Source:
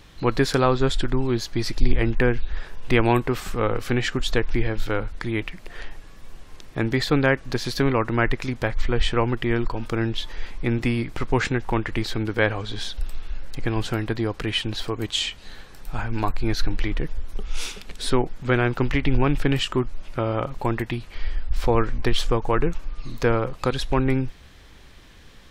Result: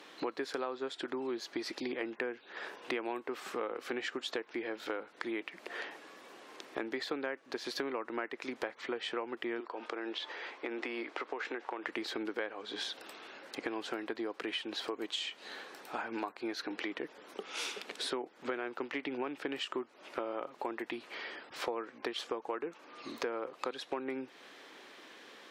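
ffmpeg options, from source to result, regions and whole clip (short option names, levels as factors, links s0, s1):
-filter_complex "[0:a]asettb=1/sr,asplit=3[s0][s1][s2];[s0]atrim=end=9.604[s3];[s1]atrim=start=9.6:end=11.84,asetpts=PTS-STARTPTS,afade=t=in:d=0.004:c=qsin,afade=t=out:st=2.236:d=0.004:c=qsin,highpass=370,lowpass=7100,highshelf=f=5200:g=-7,acompressor=threshold=0.0355:ratio=6:attack=3.2:release=140:knee=1:detection=peak[s4];[s2]atrim=start=11.836[s5];[s3][s4]acrossfade=d=0.004:c1=hsin:c2=qsin[s6];[s6][s5]acrossfade=d=0.004:c1=qsin:c2=hsin,highpass=f=300:w=0.5412,highpass=f=300:w=1.3066,aemphasis=mode=reproduction:type=cd,acompressor=threshold=0.0158:ratio=6,volume=1.12"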